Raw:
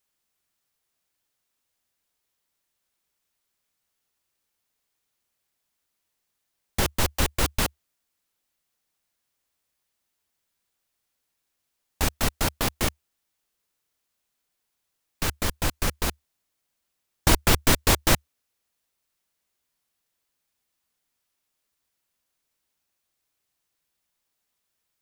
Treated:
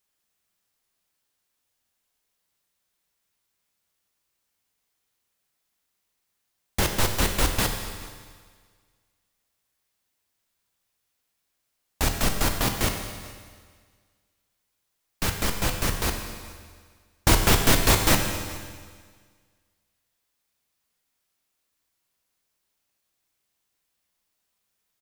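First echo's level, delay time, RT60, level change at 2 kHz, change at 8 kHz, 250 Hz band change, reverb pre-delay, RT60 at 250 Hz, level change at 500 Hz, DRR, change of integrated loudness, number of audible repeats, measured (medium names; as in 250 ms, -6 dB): -22.0 dB, 425 ms, 1.7 s, +1.5 dB, +1.5 dB, +1.5 dB, 10 ms, 1.7 s, +1.5 dB, 4.0 dB, +1.0 dB, 1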